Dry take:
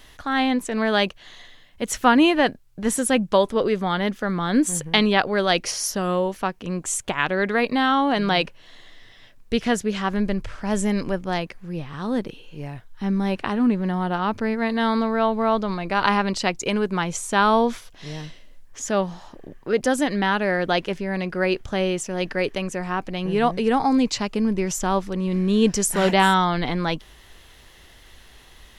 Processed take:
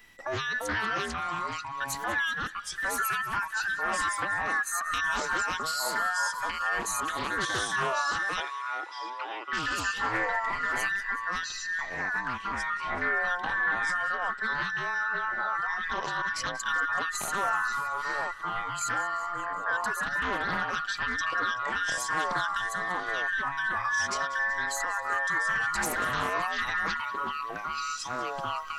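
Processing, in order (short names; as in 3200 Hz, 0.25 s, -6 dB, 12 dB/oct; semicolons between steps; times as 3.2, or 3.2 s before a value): band inversion scrambler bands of 2000 Hz; spectral noise reduction 9 dB; compressor 3:1, threshold -30 dBFS, peak gain reduction 14 dB; limiter -22 dBFS, peak gain reduction 7.5 dB; echoes that change speed 0.276 s, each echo -4 st, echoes 2; 8.4–9.53 Chebyshev band-pass 330–4400 Hz, order 4; on a send: thin delay 0.189 s, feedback 67%, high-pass 1500 Hz, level -16.5 dB; on the sum: Doppler distortion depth 0.29 ms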